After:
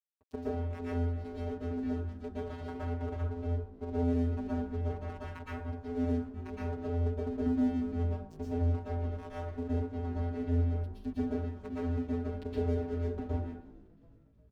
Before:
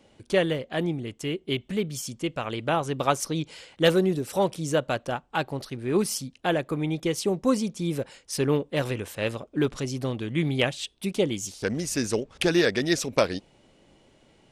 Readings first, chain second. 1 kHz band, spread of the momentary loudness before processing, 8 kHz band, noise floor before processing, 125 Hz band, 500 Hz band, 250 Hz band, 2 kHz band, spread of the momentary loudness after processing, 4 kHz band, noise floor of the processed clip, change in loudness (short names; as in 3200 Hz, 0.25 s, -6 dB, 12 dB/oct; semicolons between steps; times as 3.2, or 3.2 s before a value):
-12.5 dB, 8 LU, under -30 dB, -61 dBFS, -2.0 dB, -11.5 dB, -6.5 dB, -19.5 dB, 9 LU, under -25 dB, -59 dBFS, -8.0 dB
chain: minimum comb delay 0.62 ms; treble ducked by the level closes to 330 Hz, closed at -23 dBFS; vocoder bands 8, square 85.4 Hz; crossover distortion -46 dBFS; frequency-shifting echo 0.36 s, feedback 62%, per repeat -51 Hz, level -22.5 dB; plate-style reverb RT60 0.57 s, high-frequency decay 0.6×, pre-delay 0.105 s, DRR -7 dB; gain -8 dB